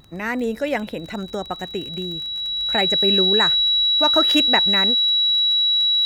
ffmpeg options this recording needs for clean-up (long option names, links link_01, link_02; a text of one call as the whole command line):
ffmpeg -i in.wav -af "adeclick=threshold=4,bandreject=frequency=3900:width=30" out.wav